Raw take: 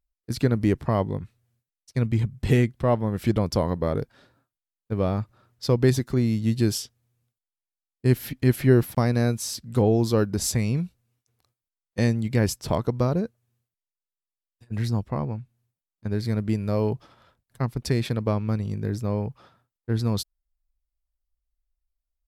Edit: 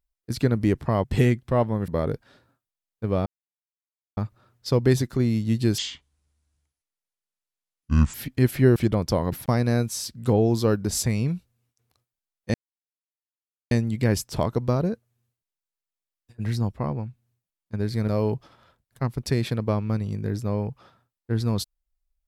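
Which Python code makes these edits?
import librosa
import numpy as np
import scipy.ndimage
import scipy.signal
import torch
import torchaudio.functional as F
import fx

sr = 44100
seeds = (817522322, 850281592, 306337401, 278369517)

y = fx.edit(x, sr, fx.cut(start_s=1.04, length_s=1.32),
    fx.move(start_s=3.2, length_s=0.56, to_s=8.81),
    fx.insert_silence(at_s=5.14, length_s=0.91),
    fx.speed_span(start_s=6.75, length_s=1.44, speed=0.61),
    fx.insert_silence(at_s=12.03, length_s=1.17),
    fx.cut(start_s=16.4, length_s=0.27), tone=tone)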